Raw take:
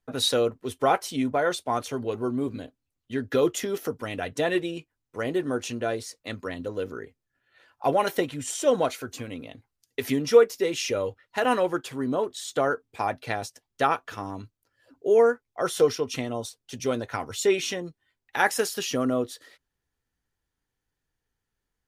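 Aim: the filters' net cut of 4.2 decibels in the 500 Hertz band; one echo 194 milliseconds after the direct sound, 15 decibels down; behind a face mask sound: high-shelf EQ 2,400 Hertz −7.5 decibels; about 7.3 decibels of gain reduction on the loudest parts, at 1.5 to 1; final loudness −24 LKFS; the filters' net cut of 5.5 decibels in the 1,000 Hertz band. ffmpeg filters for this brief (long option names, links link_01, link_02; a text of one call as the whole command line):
ffmpeg -i in.wav -af "equalizer=frequency=500:width_type=o:gain=-3.5,equalizer=frequency=1000:width_type=o:gain=-5,acompressor=threshold=-35dB:ratio=1.5,highshelf=frequency=2400:gain=-7.5,aecho=1:1:194:0.178,volume=11dB" out.wav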